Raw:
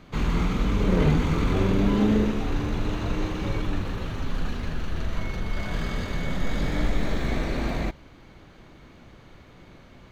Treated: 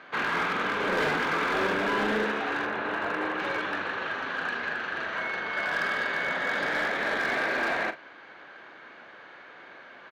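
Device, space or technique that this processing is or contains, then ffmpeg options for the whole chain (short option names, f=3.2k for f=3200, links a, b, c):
megaphone: -filter_complex "[0:a]asettb=1/sr,asplit=3[a][b][c];[a]atrim=end=2.654[d];[b]atrim=start=2.65:end=3.39,asetpts=PTS-STARTPTS,afade=t=in:d=0.004:c=qsin,afade=t=out:st=0.736:d=0.004:c=qsin,aemphasis=mode=reproduction:type=75fm[e];[c]atrim=start=3.386[f];[d][e]acrossfade=d=0.004:c1=hsin:c2=qsin[g];[g][f]acrossfade=d=0.004:c1=qsin:c2=hsin,highpass=590,lowpass=3k,equalizer=f=1.6k:t=o:w=0.27:g=11,asoftclip=type=hard:threshold=-28.5dB,asplit=2[h][i];[i]adelay=42,volume=-11.5dB[j];[h][j]amix=inputs=2:normalize=0,volume=6dB"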